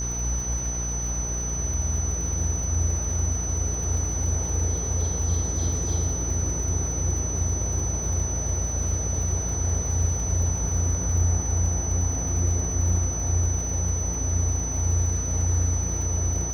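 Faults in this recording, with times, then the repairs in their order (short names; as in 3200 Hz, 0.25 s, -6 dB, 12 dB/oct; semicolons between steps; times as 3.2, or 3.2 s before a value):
buzz 60 Hz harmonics 38 -30 dBFS
crackle 56/s -33 dBFS
tone 6000 Hz -29 dBFS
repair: de-click; de-hum 60 Hz, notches 38; notch 6000 Hz, Q 30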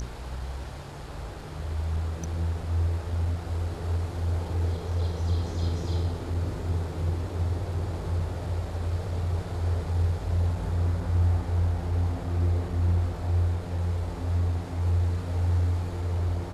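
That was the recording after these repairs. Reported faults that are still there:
none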